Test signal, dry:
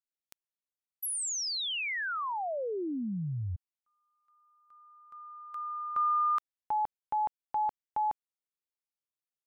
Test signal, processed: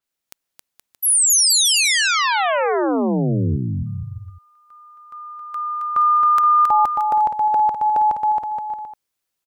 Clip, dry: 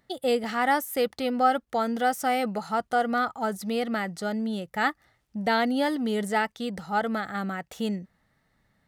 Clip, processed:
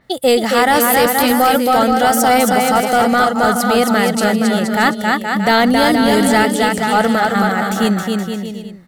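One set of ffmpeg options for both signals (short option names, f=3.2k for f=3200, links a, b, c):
-af "aecho=1:1:270|472.5|624.4|738.3|823.7:0.631|0.398|0.251|0.158|0.1,apsyclip=20dB,adynamicequalizer=threshold=0.0501:dfrequency=4700:dqfactor=0.7:tfrequency=4700:tqfactor=0.7:attack=5:release=100:ratio=0.4:range=3:mode=boostabove:tftype=highshelf,volume=-7dB"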